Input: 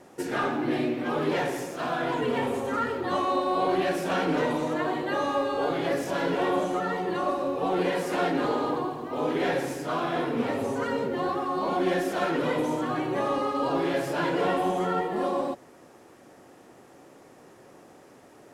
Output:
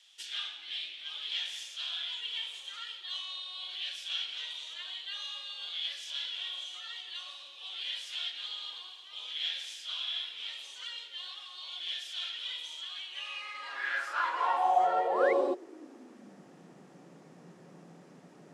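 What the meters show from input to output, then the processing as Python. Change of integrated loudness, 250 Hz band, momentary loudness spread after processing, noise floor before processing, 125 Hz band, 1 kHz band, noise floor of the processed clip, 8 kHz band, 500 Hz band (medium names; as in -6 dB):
-7.0 dB, -20.5 dB, 15 LU, -53 dBFS, under -25 dB, -6.5 dB, -55 dBFS, -5.5 dB, -11.5 dB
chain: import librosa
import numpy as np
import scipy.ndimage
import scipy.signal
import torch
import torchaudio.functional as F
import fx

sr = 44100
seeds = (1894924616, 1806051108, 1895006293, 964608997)

y = fx.high_shelf(x, sr, hz=4000.0, db=9.0)
y = fx.rider(y, sr, range_db=10, speed_s=0.5)
y = fx.filter_sweep_highpass(y, sr, from_hz=3300.0, to_hz=170.0, start_s=13.06, end_s=16.47, q=7.5)
y = fx.spec_paint(y, sr, seeds[0], shape='rise', start_s=15.06, length_s=0.27, low_hz=630.0, high_hz=2300.0, level_db=-26.0)
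y = fx.air_absorb(y, sr, metres=79.0)
y = F.gain(torch.from_numpy(y), -7.5).numpy()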